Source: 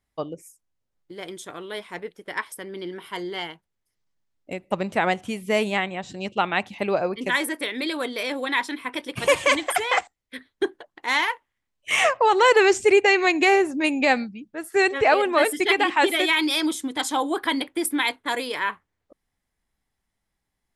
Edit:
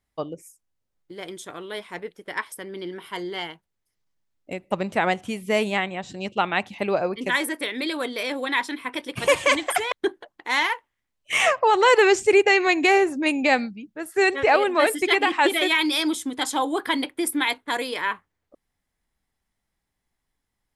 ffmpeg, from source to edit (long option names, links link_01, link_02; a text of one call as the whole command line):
ffmpeg -i in.wav -filter_complex "[0:a]asplit=2[link_01][link_02];[link_01]atrim=end=9.922[link_03];[link_02]atrim=start=10.498[link_04];[link_03][link_04]acrossfade=duration=0.004:curve1=hsin:curve2=hsin" out.wav